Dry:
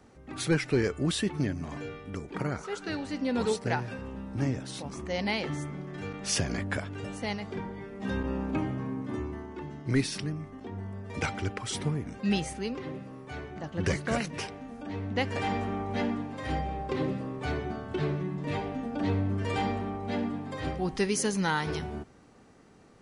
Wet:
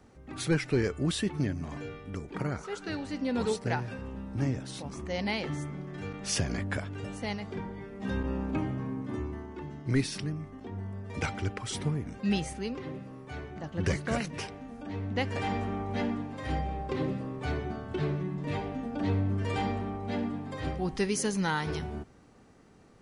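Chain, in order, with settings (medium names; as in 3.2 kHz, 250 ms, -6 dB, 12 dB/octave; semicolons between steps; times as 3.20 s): bass shelf 130 Hz +4.5 dB; trim -2 dB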